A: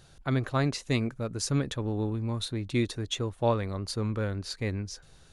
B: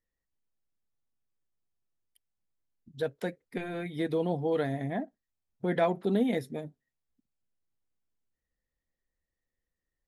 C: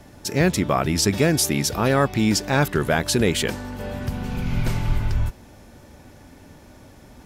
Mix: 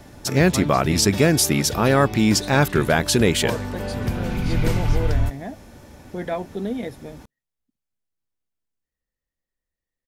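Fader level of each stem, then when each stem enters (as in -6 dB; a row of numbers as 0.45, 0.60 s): -3.5, -0.5, +2.0 dB; 0.00, 0.50, 0.00 s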